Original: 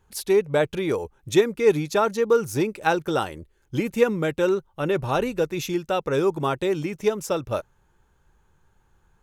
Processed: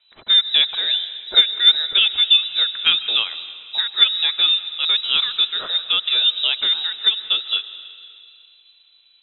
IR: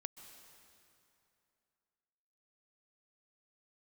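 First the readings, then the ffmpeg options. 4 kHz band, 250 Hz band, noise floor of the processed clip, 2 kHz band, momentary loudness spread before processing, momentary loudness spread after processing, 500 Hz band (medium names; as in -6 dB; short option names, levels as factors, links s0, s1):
+25.5 dB, under -20 dB, -55 dBFS, +4.5 dB, 7 LU, 9 LU, -22.5 dB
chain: -filter_complex "[0:a]equalizer=f=100:t=o:w=0.67:g=-6,equalizer=f=250:t=o:w=0.67:g=-5,equalizer=f=1600:t=o:w=0.67:g=-3,asplit=2[s0][s1];[1:a]atrim=start_sample=2205[s2];[s1][s2]afir=irnorm=-1:irlink=0,volume=1.88[s3];[s0][s3]amix=inputs=2:normalize=0,lowpass=f=3400:t=q:w=0.5098,lowpass=f=3400:t=q:w=0.6013,lowpass=f=3400:t=q:w=0.9,lowpass=f=3400:t=q:w=2.563,afreqshift=-4000,volume=0.841"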